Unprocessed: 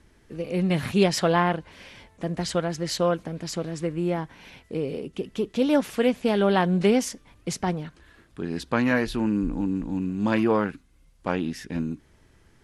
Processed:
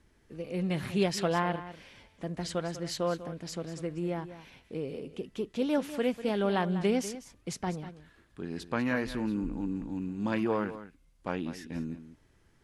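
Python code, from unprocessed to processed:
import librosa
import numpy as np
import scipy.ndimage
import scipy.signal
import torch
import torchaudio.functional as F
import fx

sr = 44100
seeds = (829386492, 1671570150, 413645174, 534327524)

y = x + 10.0 ** (-13.5 / 20.0) * np.pad(x, (int(196 * sr / 1000.0), 0))[:len(x)]
y = y * 10.0 ** (-7.5 / 20.0)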